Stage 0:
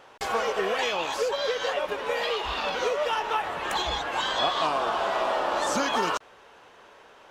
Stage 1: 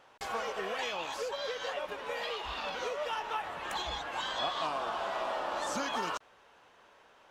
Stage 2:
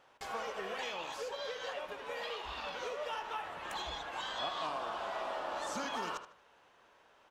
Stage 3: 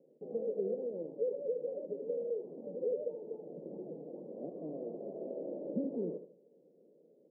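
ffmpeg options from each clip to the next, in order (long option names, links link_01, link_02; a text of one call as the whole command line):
ffmpeg -i in.wav -af "equalizer=frequency=410:width_type=o:width=0.61:gain=-3.5,volume=-8dB" out.wav
ffmpeg -i in.wav -filter_complex "[0:a]asplit=2[link_01][link_02];[link_02]adelay=76,lowpass=frequency=4800:poles=1,volume=-10dB,asplit=2[link_03][link_04];[link_04]adelay=76,lowpass=frequency=4800:poles=1,volume=0.35,asplit=2[link_05][link_06];[link_06]adelay=76,lowpass=frequency=4800:poles=1,volume=0.35,asplit=2[link_07][link_08];[link_08]adelay=76,lowpass=frequency=4800:poles=1,volume=0.35[link_09];[link_01][link_03][link_05][link_07][link_09]amix=inputs=5:normalize=0,volume=-4.5dB" out.wav
ffmpeg -i in.wav -af "asuperpass=centerf=280:order=12:qfactor=0.75,volume=9.5dB" out.wav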